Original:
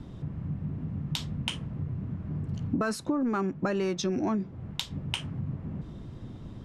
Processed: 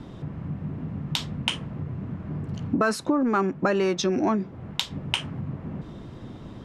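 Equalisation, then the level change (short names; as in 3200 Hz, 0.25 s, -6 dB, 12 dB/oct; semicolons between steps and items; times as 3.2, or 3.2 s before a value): low shelf 200 Hz -11 dB; high shelf 4200 Hz -5.5 dB; +8.5 dB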